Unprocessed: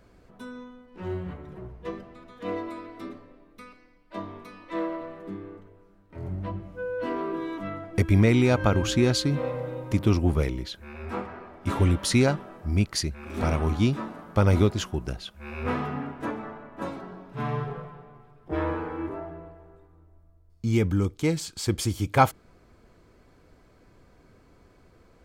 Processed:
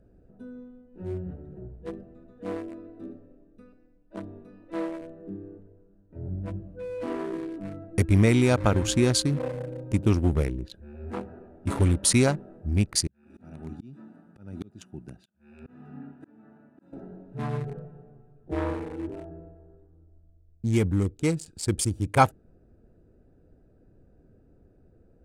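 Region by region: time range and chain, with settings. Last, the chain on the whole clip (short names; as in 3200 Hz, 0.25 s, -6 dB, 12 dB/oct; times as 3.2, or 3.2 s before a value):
13.07–16.93 HPF 200 Hz + bell 490 Hz -14 dB 1.2 oct + auto swell 0.365 s
whole clip: Wiener smoothing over 41 samples; bell 9100 Hz +12.5 dB 0.79 oct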